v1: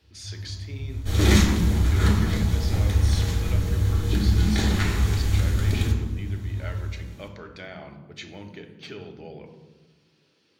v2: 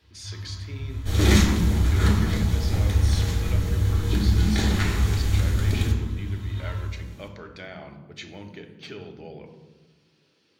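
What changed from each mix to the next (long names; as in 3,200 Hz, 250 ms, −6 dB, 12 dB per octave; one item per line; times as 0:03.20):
first sound: add flat-topped bell 2,000 Hz +11.5 dB 2.3 octaves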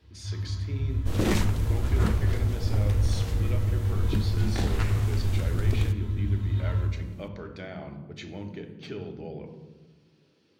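second sound: send off
master: add tilt shelving filter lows +4.5 dB, about 720 Hz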